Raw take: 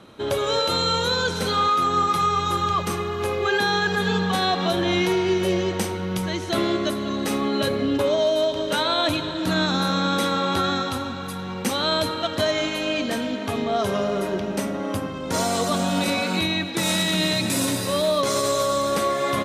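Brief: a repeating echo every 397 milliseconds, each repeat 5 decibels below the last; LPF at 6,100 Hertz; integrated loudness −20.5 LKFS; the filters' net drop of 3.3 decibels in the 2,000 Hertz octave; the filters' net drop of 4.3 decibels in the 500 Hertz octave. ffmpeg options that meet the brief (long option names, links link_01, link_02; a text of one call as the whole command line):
ffmpeg -i in.wav -af "lowpass=6100,equalizer=frequency=500:width_type=o:gain=-5.5,equalizer=frequency=2000:width_type=o:gain=-4,aecho=1:1:397|794|1191|1588|1985|2382|2779:0.562|0.315|0.176|0.0988|0.0553|0.031|0.0173,volume=3dB" out.wav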